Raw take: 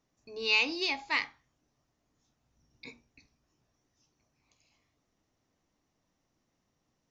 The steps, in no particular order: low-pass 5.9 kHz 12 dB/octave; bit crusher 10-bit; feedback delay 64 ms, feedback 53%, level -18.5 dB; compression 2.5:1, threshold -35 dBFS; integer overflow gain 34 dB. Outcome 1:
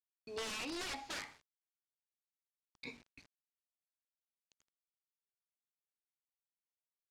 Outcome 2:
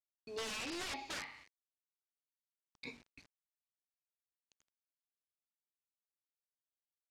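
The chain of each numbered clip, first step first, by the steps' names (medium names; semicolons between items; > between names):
compression > integer overflow > feedback delay > bit crusher > low-pass; feedback delay > bit crusher > compression > integer overflow > low-pass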